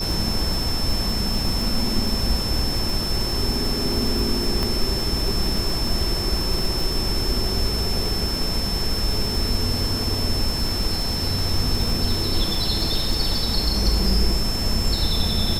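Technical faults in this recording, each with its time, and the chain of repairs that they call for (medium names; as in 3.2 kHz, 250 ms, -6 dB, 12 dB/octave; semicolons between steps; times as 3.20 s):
crackle 57 per s -26 dBFS
whine 5.3 kHz -26 dBFS
4.63 s: pop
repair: de-click; band-stop 5.3 kHz, Q 30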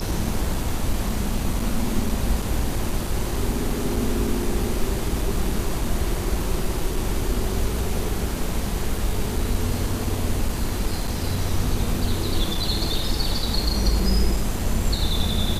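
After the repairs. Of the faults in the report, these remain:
nothing left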